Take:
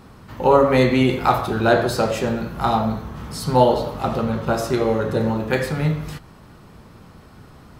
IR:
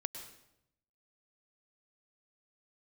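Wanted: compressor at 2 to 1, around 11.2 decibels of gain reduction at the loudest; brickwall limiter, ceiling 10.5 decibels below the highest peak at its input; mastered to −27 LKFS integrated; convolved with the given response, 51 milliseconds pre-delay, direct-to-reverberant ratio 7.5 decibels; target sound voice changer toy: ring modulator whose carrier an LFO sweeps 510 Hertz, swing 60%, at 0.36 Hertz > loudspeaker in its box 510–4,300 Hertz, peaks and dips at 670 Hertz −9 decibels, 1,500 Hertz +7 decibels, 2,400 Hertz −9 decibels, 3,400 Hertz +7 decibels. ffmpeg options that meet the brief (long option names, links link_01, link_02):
-filter_complex "[0:a]acompressor=threshold=-31dB:ratio=2,alimiter=limit=-23.5dB:level=0:latency=1,asplit=2[link_01][link_02];[1:a]atrim=start_sample=2205,adelay=51[link_03];[link_02][link_03]afir=irnorm=-1:irlink=0,volume=-7dB[link_04];[link_01][link_04]amix=inputs=2:normalize=0,aeval=exprs='val(0)*sin(2*PI*510*n/s+510*0.6/0.36*sin(2*PI*0.36*n/s))':channel_layout=same,highpass=510,equalizer=frequency=670:width_type=q:width=4:gain=-9,equalizer=frequency=1500:width_type=q:width=4:gain=7,equalizer=frequency=2400:width_type=q:width=4:gain=-9,equalizer=frequency=3400:width_type=q:width=4:gain=7,lowpass=frequency=4300:width=0.5412,lowpass=frequency=4300:width=1.3066,volume=10dB"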